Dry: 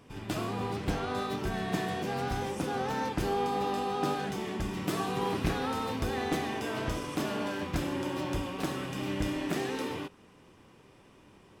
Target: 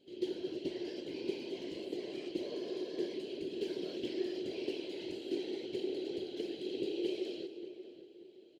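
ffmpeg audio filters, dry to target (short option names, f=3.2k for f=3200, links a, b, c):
-filter_complex "[0:a]afftfilt=real='hypot(re,im)*cos(2*PI*random(0))':imag='hypot(re,im)*sin(2*PI*random(1))':win_size=512:overlap=0.75,asplit=3[a][b][c];[a]bandpass=f=270:t=q:w=8,volume=0dB[d];[b]bandpass=f=2.29k:t=q:w=8,volume=-6dB[e];[c]bandpass=f=3.01k:t=q:w=8,volume=-9dB[f];[d][e][f]amix=inputs=3:normalize=0,asplit=2[g][h];[h]adelay=787,lowpass=f=1.4k:p=1,volume=-11.5dB,asplit=2[i][j];[j]adelay=787,lowpass=f=1.4k:p=1,volume=0.35,asplit=2[k][l];[l]adelay=787,lowpass=f=1.4k:p=1,volume=0.35,asplit=2[m][n];[n]adelay=787,lowpass=f=1.4k:p=1,volume=0.35[o];[i][k][m][o]amix=inputs=4:normalize=0[p];[g][p]amix=inputs=2:normalize=0,asetrate=59535,aresample=44100,asplit=2[q][r];[r]aecho=0:1:221:0.211[s];[q][s]amix=inputs=2:normalize=0,volume=9.5dB"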